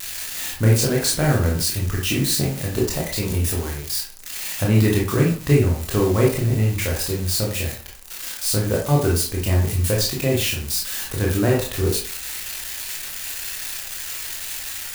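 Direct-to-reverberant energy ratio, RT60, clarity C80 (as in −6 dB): −3.0 dB, 0.40 s, 10.5 dB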